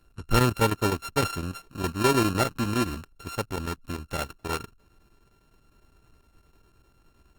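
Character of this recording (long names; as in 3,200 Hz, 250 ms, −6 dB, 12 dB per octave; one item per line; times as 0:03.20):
a buzz of ramps at a fixed pitch in blocks of 32 samples
chopped level 9.8 Hz, depth 60%, duty 85%
Opus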